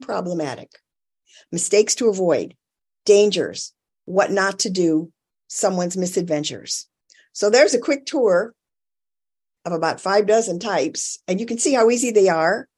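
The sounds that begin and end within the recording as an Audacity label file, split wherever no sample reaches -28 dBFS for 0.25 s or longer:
1.530000	2.470000	sound
3.070000	3.670000	sound
4.080000	5.040000	sound
5.510000	6.810000	sound
7.360000	8.470000	sound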